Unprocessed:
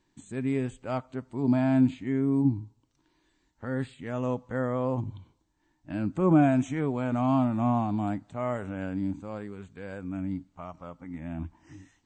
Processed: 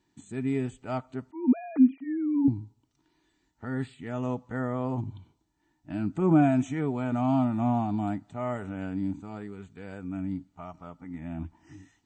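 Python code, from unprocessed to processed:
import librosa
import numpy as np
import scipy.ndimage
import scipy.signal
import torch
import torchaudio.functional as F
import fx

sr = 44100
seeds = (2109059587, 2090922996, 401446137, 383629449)

y = fx.sine_speech(x, sr, at=(1.31, 2.48))
y = fx.notch_comb(y, sr, f0_hz=540.0)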